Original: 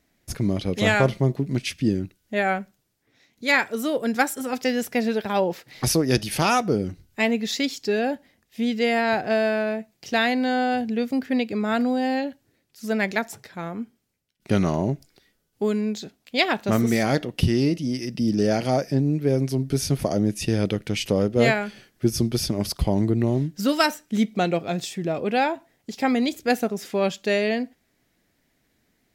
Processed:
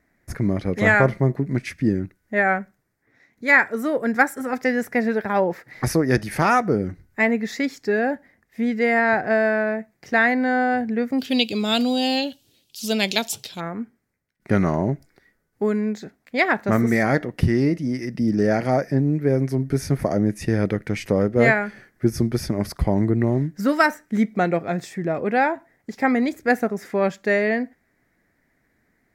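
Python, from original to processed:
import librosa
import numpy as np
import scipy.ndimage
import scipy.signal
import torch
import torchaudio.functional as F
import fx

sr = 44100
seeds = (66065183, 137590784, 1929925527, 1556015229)

y = fx.high_shelf_res(x, sr, hz=2400.0, db=fx.steps((0.0, -7.5), (11.18, 9.0), (13.59, -7.0)), q=3.0)
y = F.gain(torch.from_numpy(y), 1.5).numpy()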